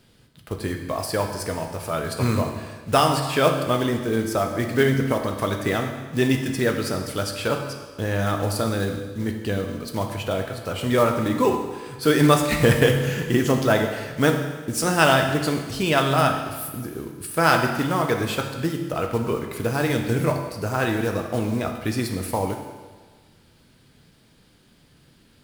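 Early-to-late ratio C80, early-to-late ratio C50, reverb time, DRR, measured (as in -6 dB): 7.5 dB, 6.0 dB, 1.4 s, 3.5 dB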